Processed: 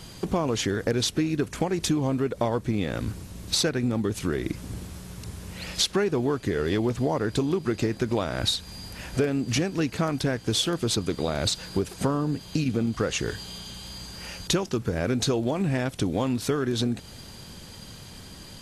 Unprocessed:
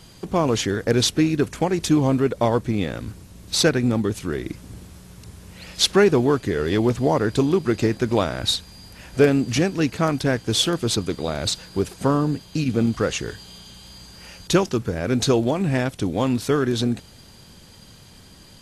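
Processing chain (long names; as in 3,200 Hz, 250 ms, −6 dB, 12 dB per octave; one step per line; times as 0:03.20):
downward compressor 5 to 1, threshold −26 dBFS, peak gain reduction 14 dB
level +3.5 dB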